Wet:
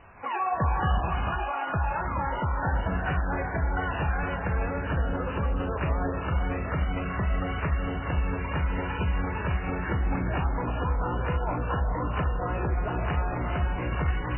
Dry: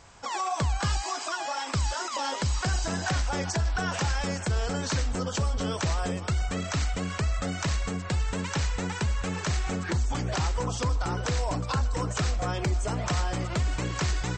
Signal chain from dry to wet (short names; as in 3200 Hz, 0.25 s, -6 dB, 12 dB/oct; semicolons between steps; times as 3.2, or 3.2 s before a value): elliptic low-pass 2900 Hz, stop band 70 dB; vocal rider 2 s; non-linear reverb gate 0.5 s rising, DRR 2.5 dB; MP3 8 kbps 8000 Hz